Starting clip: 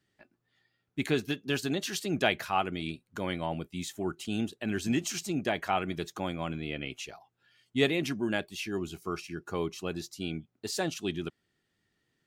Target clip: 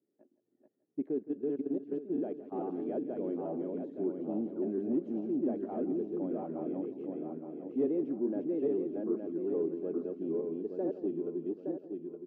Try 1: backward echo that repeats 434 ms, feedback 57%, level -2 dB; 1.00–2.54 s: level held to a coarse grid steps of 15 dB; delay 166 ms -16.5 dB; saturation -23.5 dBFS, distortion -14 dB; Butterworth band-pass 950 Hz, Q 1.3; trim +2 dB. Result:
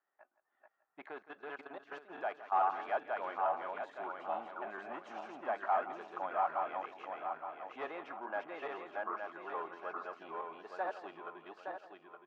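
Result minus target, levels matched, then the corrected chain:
1 kHz band +18.5 dB
backward echo that repeats 434 ms, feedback 57%, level -2 dB; 1.00–2.54 s: level held to a coarse grid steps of 15 dB; delay 166 ms -16.5 dB; saturation -23.5 dBFS, distortion -14 dB; Butterworth band-pass 360 Hz, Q 1.3; trim +2 dB

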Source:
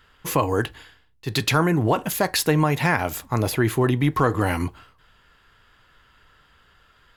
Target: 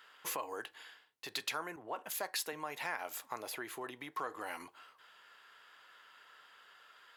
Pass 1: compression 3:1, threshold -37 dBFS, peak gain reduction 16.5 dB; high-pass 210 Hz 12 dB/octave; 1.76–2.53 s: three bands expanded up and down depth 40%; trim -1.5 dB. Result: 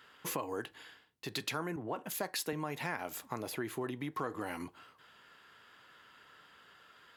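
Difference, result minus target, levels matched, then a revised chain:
250 Hz band +9.0 dB
compression 3:1, threshold -37 dBFS, peak gain reduction 16.5 dB; high-pass 570 Hz 12 dB/octave; 1.76–2.53 s: three bands expanded up and down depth 40%; trim -1.5 dB

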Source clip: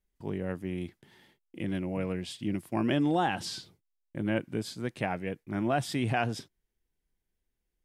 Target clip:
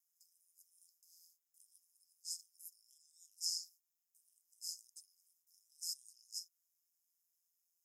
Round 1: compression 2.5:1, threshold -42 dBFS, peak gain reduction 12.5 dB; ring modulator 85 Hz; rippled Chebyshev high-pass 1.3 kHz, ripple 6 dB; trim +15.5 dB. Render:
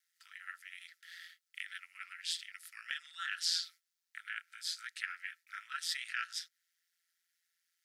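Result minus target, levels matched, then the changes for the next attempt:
4 kHz band +3.5 dB
change: rippled Chebyshev high-pass 5 kHz, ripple 6 dB

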